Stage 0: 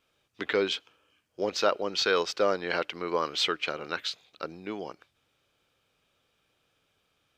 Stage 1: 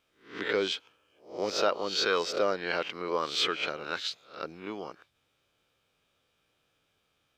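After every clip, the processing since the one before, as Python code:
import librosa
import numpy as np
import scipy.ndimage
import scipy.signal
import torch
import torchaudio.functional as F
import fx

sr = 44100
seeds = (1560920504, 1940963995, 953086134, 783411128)

y = fx.spec_swells(x, sr, rise_s=0.4)
y = F.gain(torch.from_numpy(y), -3.0).numpy()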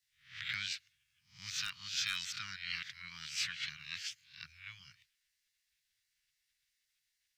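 y = fx.spec_gate(x, sr, threshold_db=-10, keep='weak')
y = 10.0 ** (-19.0 / 20.0) * (np.abs((y / 10.0 ** (-19.0 / 20.0) + 3.0) % 4.0 - 2.0) - 1.0)
y = scipy.signal.sosfilt(scipy.signal.ellip(3, 1.0, 80, [130.0, 1800.0], 'bandstop', fs=sr, output='sos'), y)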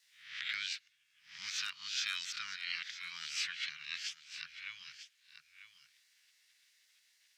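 y = fx.weighting(x, sr, curve='A')
y = y + 10.0 ** (-17.0 / 20.0) * np.pad(y, (int(945 * sr / 1000.0), 0))[:len(y)]
y = fx.band_squash(y, sr, depth_pct=40)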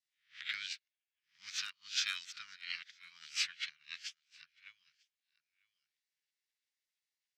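y = fx.upward_expand(x, sr, threshold_db=-52.0, expansion=2.5)
y = F.gain(torch.from_numpy(y), 4.0).numpy()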